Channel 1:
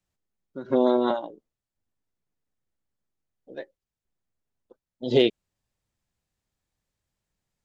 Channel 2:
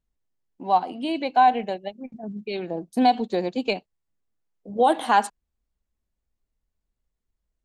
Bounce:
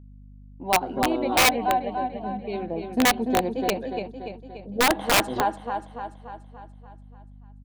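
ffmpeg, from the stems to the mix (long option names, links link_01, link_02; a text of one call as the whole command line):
ffmpeg -i stem1.wav -i stem2.wav -filter_complex "[0:a]alimiter=limit=-17.5dB:level=0:latency=1,bandreject=frequency=60:width_type=h:width=6,bandreject=frequency=120:width_type=h:width=6,bandreject=frequency=180:width_type=h:width=6,bandreject=frequency=240:width_type=h:width=6,bandreject=frequency=300:width_type=h:width=6,bandreject=frequency=360:width_type=h:width=6,adelay=250,volume=-0.5dB[link_01];[1:a]highshelf=frequency=5400:gain=-8.5,volume=-0.5dB,asplit=3[link_02][link_03][link_04];[link_03]volume=-5.5dB[link_05];[link_04]apad=whole_len=348121[link_06];[link_01][link_06]sidechaingate=range=-33dB:threshold=-44dB:ratio=16:detection=peak[link_07];[link_05]aecho=0:1:290|580|870|1160|1450|1740|2030|2320:1|0.54|0.292|0.157|0.085|0.0459|0.0248|0.0134[link_08];[link_07][link_02][link_08]amix=inputs=3:normalize=0,highshelf=frequency=2100:gain=-7.5,aeval=exprs='val(0)+0.00562*(sin(2*PI*50*n/s)+sin(2*PI*2*50*n/s)/2+sin(2*PI*3*50*n/s)/3+sin(2*PI*4*50*n/s)/4+sin(2*PI*5*50*n/s)/5)':channel_layout=same,aeval=exprs='(mod(4.22*val(0)+1,2)-1)/4.22':channel_layout=same" out.wav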